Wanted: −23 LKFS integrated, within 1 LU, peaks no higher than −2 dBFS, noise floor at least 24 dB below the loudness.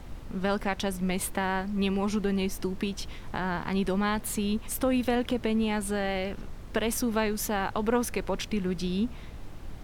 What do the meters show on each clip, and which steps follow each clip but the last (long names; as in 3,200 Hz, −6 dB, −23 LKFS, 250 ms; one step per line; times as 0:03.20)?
background noise floor −42 dBFS; target noise floor −54 dBFS; integrated loudness −29.5 LKFS; sample peak −14.0 dBFS; target loudness −23.0 LKFS
→ noise reduction from a noise print 12 dB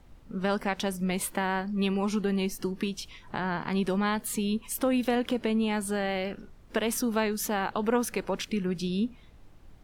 background noise floor −53 dBFS; target noise floor −54 dBFS
→ noise reduction from a noise print 6 dB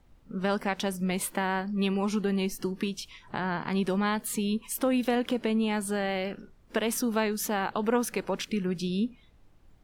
background noise floor −59 dBFS; integrated loudness −29.5 LKFS; sample peak −14.5 dBFS; target loudness −23.0 LKFS
→ level +6.5 dB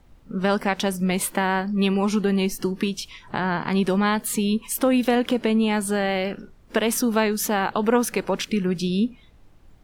integrated loudness −23.0 LKFS; sample peak −8.0 dBFS; background noise floor −52 dBFS